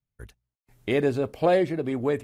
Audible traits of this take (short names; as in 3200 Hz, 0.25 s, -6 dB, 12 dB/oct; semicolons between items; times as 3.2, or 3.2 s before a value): noise floor -92 dBFS; spectral tilt -6.0 dB/oct